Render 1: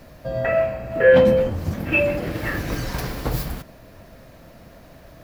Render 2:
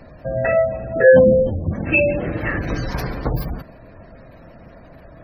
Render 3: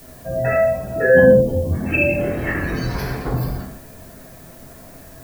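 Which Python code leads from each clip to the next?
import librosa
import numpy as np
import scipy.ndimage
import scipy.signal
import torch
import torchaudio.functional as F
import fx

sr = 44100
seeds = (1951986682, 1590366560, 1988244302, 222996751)

y1 = fx.spec_gate(x, sr, threshold_db=-25, keep='strong')
y1 = y1 * librosa.db_to_amplitude(3.0)
y2 = fx.rev_gated(y1, sr, seeds[0], gate_ms=250, shape='falling', drr_db=-6.0)
y2 = fx.dmg_noise_colour(y2, sr, seeds[1], colour='blue', level_db=-41.0)
y2 = y2 * librosa.db_to_amplitude(-6.0)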